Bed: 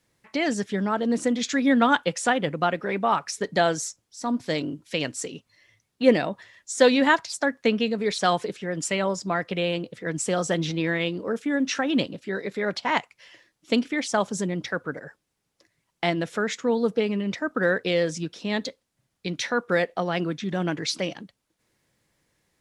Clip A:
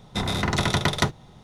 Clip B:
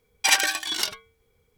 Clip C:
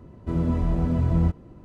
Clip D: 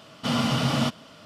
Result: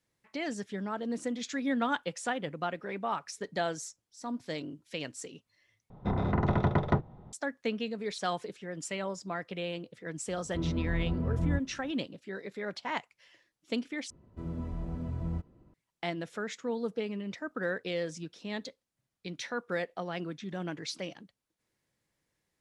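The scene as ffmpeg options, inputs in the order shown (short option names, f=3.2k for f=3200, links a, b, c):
-filter_complex "[3:a]asplit=2[a][b];[0:a]volume=-10.5dB[c];[1:a]lowpass=1k[d];[a]bass=f=250:g=1,treble=f=4k:g=-15[e];[c]asplit=3[f][g][h];[f]atrim=end=5.904[i];[d]atrim=end=1.43,asetpts=PTS-STARTPTS,volume=-2dB[j];[g]atrim=start=7.326:end=14.104[k];[b]atrim=end=1.64,asetpts=PTS-STARTPTS,volume=-13.5dB[l];[h]atrim=start=15.736[m];[e]atrim=end=1.64,asetpts=PTS-STARTPTS,volume=-9.5dB,afade=t=in:d=0.004:c=hsin,afade=t=out:st=1.636:d=0.004:c=hsin,adelay=10280[n];[i][j]acrossfade=d=0.004:c1=hsin:c2=hsin[o];[o][k]acrossfade=d=0.004:c1=hsin:c2=hsin[p];[p][l]acrossfade=d=0.004:c1=hsin:c2=hsin[q];[q][m]acrossfade=d=0.004:c1=hsin:c2=hsin[r];[r][n]amix=inputs=2:normalize=0"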